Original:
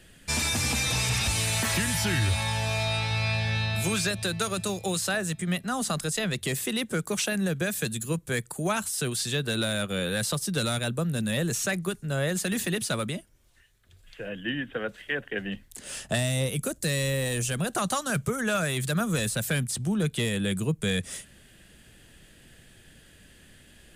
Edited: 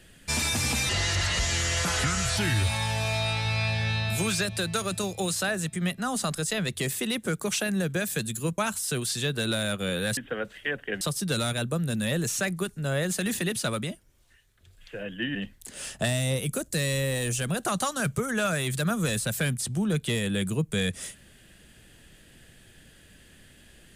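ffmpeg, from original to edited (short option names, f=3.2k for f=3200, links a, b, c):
-filter_complex "[0:a]asplit=7[a][b][c][d][e][f][g];[a]atrim=end=0.894[h];[b]atrim=start=0.89:end=2.03,asetpts=PTS-STARTPTS,asetrate=33957,aresample=44100[i];[c]atrim=start=2.026:end=8.242[j];[d]atrim=start=8.678:end=10.272[k];[e]atrim=start=14.608:end=15.452[l];[f]atrim=start=10.268:end=14.612[m];[g]atrim=start=15.448[n];[h][i]acrossfade=d=0.004:c1=hsin:c2=hsin[o];[o][j]acrossfade=d=0.004:c1=hsin:c2=hsin[p];[p][k]acrossfade=d=0.004:c1=hsin:c2=hsin[q];[q][l]acrossfade=d=0.004:c1=hsin:c2=hsin[r];[r][m]acrossfade=d=0.004:c1=hsin:c2=hsin[s];[s][n]acrossfade=d=0.004:c1=hsin:c2=hsin"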